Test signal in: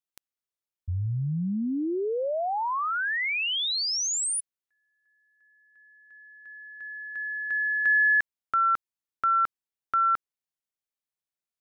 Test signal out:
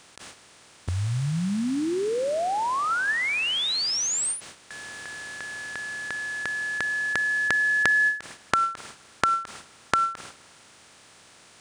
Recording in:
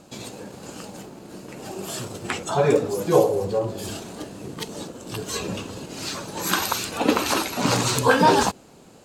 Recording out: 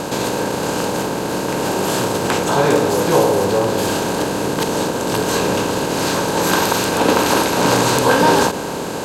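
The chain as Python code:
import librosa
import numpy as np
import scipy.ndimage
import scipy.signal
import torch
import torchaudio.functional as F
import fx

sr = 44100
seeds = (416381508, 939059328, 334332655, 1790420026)

p1 = fx.bin_compress(x, sr, power=0.4)
p2 = fx.rev_spring(p1, sr, rt60_s=3.4, pass_ms=(50,), chirp_ms=30, drr_db=18.5)
p3 = fx.gate_hold(p2, sr, open_db=-28.0, close_db=-36.0, hold_ms=87.0, range_db=-10, attack_ms=0.27, release_ms=44.0)
p4 = 10.0 ** (-14.0 / 20.0) * np.tanh(p3 / 10.0 ** (-14.0 / 20.0))
p5 = p3 + F.gain(torch.from_numpy(p4), -9.5).numpy()
p6 = fx.end_taper(p5, sr, db_per_s=150.0)
y = F.gain(torch.from_numpy(p6), -2.0).numpy()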